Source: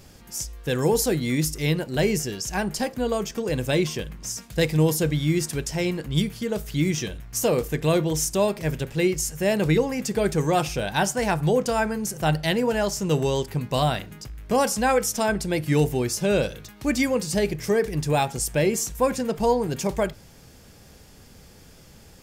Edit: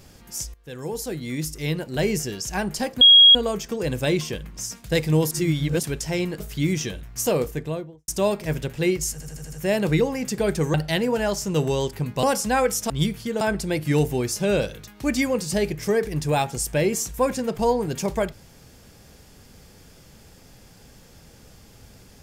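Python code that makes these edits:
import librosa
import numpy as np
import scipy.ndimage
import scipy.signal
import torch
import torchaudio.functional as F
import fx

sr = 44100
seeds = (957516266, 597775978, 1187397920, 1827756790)

y = fx.studio_fade_out(x, sr, start_s=7.48, length_s=0.77)
y = fx.edit(y, sr, fx.fade_in_from(start_s=0.54, length_s=1.7, floor_db=-16.5),
    fx.insert_tone(at_s=3.01, length_s=0.34, hz=3290.0, db=-7.5),
    fx.reverse_span(start_s=4.97, length_s=0.52),
    fx.move(start_s=6.06, length_s=0.51, to_s=15.22),
    fx.stutter(start_s=9.29, slice_s=0.08, count=6),
    fx.cut(start_s=10.51, length_s=1.78),
    fx.cut(start_s=13.78, length_s=0.77), tone=tone)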